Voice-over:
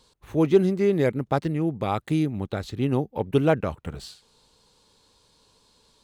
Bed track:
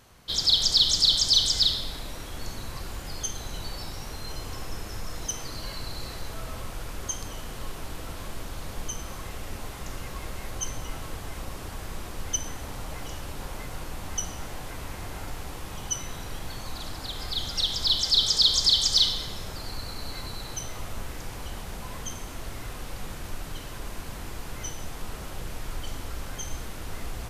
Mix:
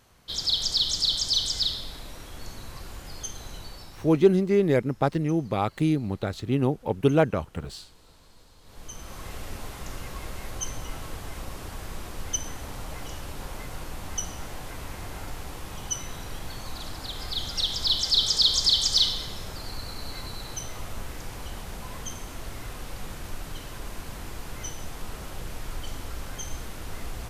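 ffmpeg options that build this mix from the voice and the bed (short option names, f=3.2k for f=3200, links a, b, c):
-filter_complex "[0:a]adelay=3700,volume=0dB[a];[1:a]volume=15.5dB,afade=t=out:st=3.49:d=0.81:silence=0.158489,afade=t=in:st=8.62:d=0.71:silence=0.105925[b];[a][b]amix=inputs=2:normalize=0"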